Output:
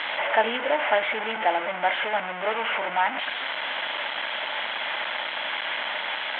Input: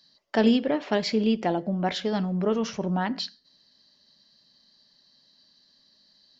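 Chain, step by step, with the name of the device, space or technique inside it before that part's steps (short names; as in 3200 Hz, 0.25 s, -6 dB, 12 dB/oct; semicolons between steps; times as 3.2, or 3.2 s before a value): digital answering machine (BPF 360–3200 Hz; delta modulation 16 kbps, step -25 dBFS; speaker cabinet 390–4100 Hz, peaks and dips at 400 Hz -7 dB, 620 Hz +5 dB, 880 Hz +9 dB, 1500 Hz +7 dB, 2100 Hz +8 dB, 3200 Hz +8 dB)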